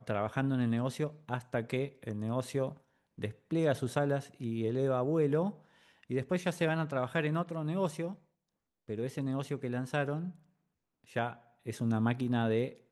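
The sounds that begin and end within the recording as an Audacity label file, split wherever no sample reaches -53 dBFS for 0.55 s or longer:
8.880000	10.360000	sound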